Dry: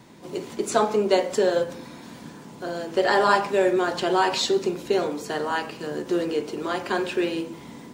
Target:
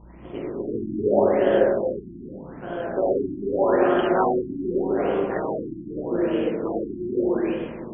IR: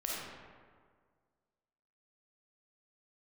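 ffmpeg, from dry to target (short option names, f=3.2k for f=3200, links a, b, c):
-filter_complex "[0:a]tremolo=f=110:d=0.788,aeval=exprs='val(0)+0.00398*(sin(2*PI*60*n/s)+sin(2*PI*2*60*n/s)/2+sin(2*PI*3*60*n/s)/3+sin(2*PI*4*60*n/s)/4+sin(2*PI*5*60*n/s)/5)':c=same[a];[1:a]atrim=start_sample=2205[b];[a][b]afir=irnorm=-1:irlink=0,afftfilt=real='re*lt(b*sr/1024,350*pow(3500/350,0.5+0.5*sin(2*PI*0.82*pts/sr)))':imag='im*lt(b*sr/1024,350*pow(3500/350,0.5+0.5*sin(2*PI*0.82*pts/sr)))':win_size=1024:overlap=0.75,volume=2dB"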